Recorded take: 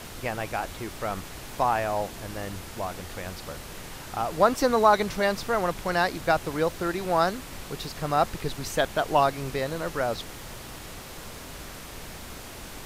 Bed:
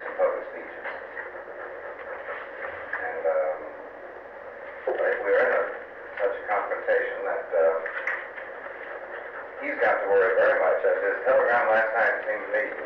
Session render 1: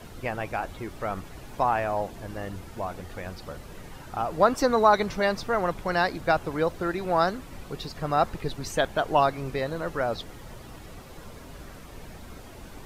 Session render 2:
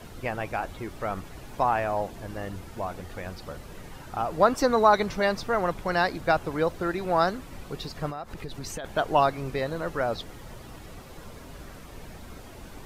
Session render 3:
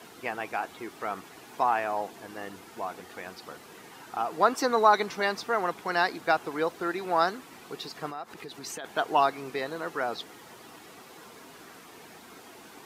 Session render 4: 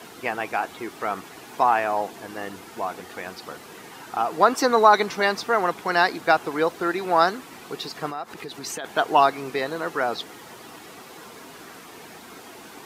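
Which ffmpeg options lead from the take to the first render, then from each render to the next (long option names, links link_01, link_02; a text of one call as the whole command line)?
ffmpeg -i in.wav -af "afftdn=noise_reduction=10:noise_floor=-41" out.wav
ffmpeg -i in.wav -filter_complex "[0:a]asplit=3[link_01][link_02][link_03];[link_01]afade=type=out:start_time=8.09:duration=0.02[link_04];[link_02]acompressor=threshold=-31dB:ratio=20:attack=3.2:release=140:knee=1:detection=peak,afade=type=in:start_time=8.09:duration=0.02,afade=type=out:start_time=8.84:duration=0.02[link_05];[link_03]afade=type=in:start_time=8.84:duration=0.02[link_06];[link_04][link_05][link_06]amix=inputs=3:normalize=0" out.wav
ffmpeg -i in.wav -af "highpass=310,equalizer=frequency=570:width_type=o:width=0.21:gain=-11.5" out.wav
ffmpeg -i in.wav -af "volume=6dB,alimiter=limit=-3dB:level=0:latency=1" out.wav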